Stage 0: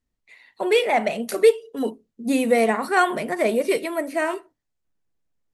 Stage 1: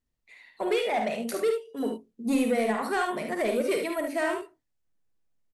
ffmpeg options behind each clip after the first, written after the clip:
ffmpeg -i in.wav -filter_complex "[0:a]alimiter=limit=-12dB:level=0:latency=1:release=495,asoftclip=type=tanh:threshold=-16dB,asplit=2[link_01][link_02];[link_02]aecho=0:1:51|73:0.422|0.447[link_03];[link_01][link_03]amix=inputs=2:normalize=0,volume=-3.5dB" out.wav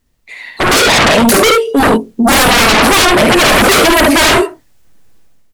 ffmpeg -i in.wav -af "aeval=exprs='0.168*sin(PI/2*6.31*val(0)/0.168)':channel_layout=same,dynaudnorm=framelen=370:gausssize=3:maxgain=11dB" out.wav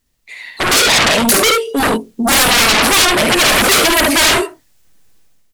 ffmpeg -i in.wav -af "highshelf=frequency=2000:gain=8,volume=-6.5dB" out.wav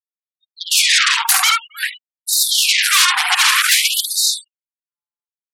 ffmpeg -i in.wav -filter_complex "[0:a]asplit=2[link_01][link_02];[link_02]adelay=270,highpass=300,lowpass=3400,asoftclip=type=hard:threshold=-9.5dB,volume=-22dB[link_03];[link_01][link_03]amix=inputs=2:normalize=0,afftfilt=real='re*gte(hypot(re,im),0.0794)':imag='im*gte(hypot(re,im),0.0794)':win_size=1024:overlap=0.75,afftfilt=real='re*gte(b*sr/1024,710*pow(3700/710,0.5+0.5*sin(2*PI*0.53*pts/sr)))':imag='im*gte(b*sr/1024,710*pow(3700/710,0.5+0.5*sin(2*PI*0.53*pts/sr)))':win_size=1024:overlap=0.75,volume=-1dB" out.wav

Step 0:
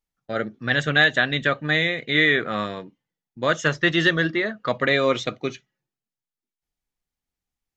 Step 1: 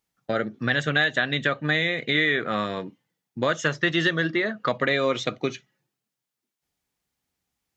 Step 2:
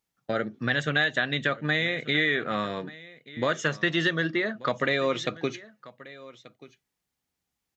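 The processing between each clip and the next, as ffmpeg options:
ffmpeg -i in.wav -af "acompressor=threshold=-33dB:ratio=2.5,highpass=80,volume=8dB" out.wav
ffmpeg -i in.wav -af "aecho=1:1:1184:0.106,volume=-2.5dB" out.wav

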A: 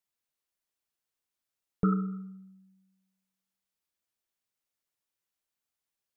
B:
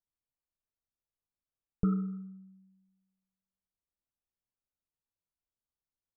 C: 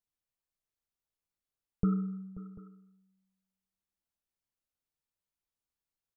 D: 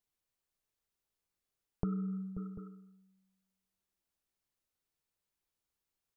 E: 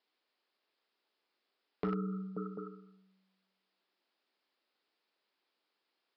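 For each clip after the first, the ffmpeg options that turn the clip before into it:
ffmpeg -i in.wav -af "lowpass=frequency=1400:width=0.5412,lowpass=frequency=1400:width=1.3066,aemphasis=mode=reproduction:type=bsi,volume=-8dB" out.wav
ffmpeg -i in.wav -af "aecho=1:1:533|741:0.141|0.1" out.wav
ffmpeg -i in.wav -af "equalizer=frequency=390:width_type=o:width=0.34:gain=3.5,acompressor=threshold=-35dB:ratio=6,volume=3dB" out.wav
ffmpeg -i in.wav -af "highpass=frequency=260:width=0.5412,highpass=frequency=260:width=1.3066,aresample=11025,asoftclip=type=hard:threshold=-38.5dB,aresample=44100,volume=10.5dB" out.wav

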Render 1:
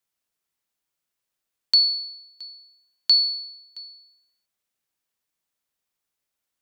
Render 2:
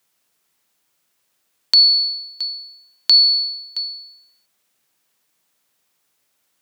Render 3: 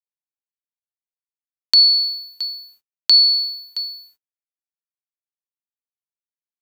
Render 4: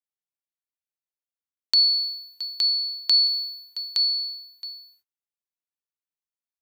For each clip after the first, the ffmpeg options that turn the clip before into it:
ffmpeg -i in.wav -af "acompressor=threshold=-25dB:ratio=2.5,highpass=110,alimiter=level_in=14.5dB:limit=-1dB:release=50:level=0:latency=1" out.wav
ffmpeg -i in.wav -af "aeval=exprs='sgn(val(0))*max(abs(val(0))-0.00501,0)':channel_layout=same" out.wav
ffmpeg -i in.wav -af "aecho=1:1:866:0.631,volume=-6.5dB" out.wav

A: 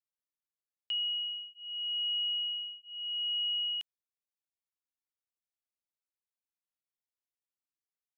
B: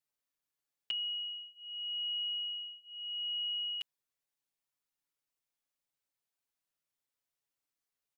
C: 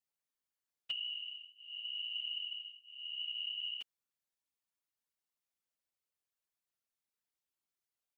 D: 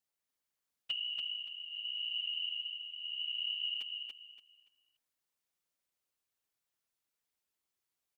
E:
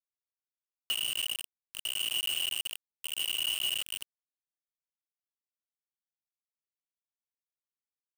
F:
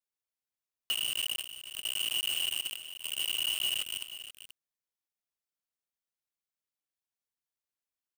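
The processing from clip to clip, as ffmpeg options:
ffmpeg -i in.wav -af "aecho=1:1:7.1:0.86,volume=2dB" out.wav
ffmpeg -i in.wav -af "afftfilt=real='hypot(re,im)*cos(2*PI*random(0))':imag='hypot(re,im)*sin(2*PI*random(1))':win_size=512:overlap=0.75,volume=2dB" out.wav
ffmpeg -i in.wav -af "aecho=1:1:286|572|858|1144:0.631|0.164|0.0427|0.0111,volume=2dB" out.wav
ffmpeg -i in.wav -af "acrusher=bits=5:mix=0:aa=0.000001,volume=4dB" out.wav
ffmpeg -i in.wav -af "aecho=1:1:482:0.237" out.wav

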